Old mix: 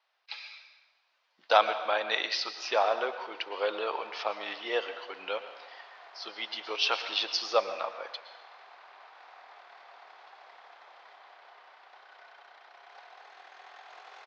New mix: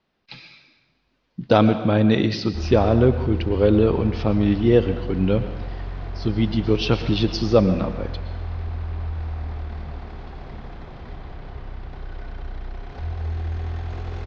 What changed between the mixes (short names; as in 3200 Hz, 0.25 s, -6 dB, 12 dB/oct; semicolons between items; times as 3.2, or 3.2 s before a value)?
background +6.0 dB; master: remove HPF 700 Hz 24 dB/oct